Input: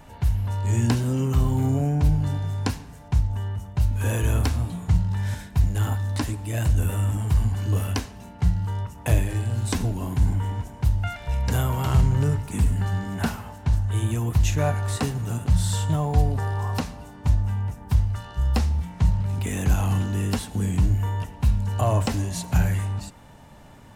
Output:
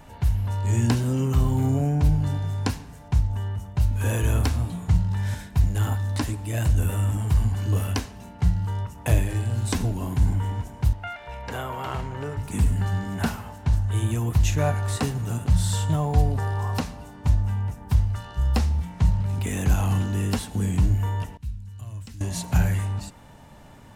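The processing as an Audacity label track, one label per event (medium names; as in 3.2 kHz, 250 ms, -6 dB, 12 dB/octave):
10.930000	12.370000	tone controls bass -15 dB, treble -12 dB
21.370000	22.210000	amplifier tone stack bass-middle-treble 6-0-2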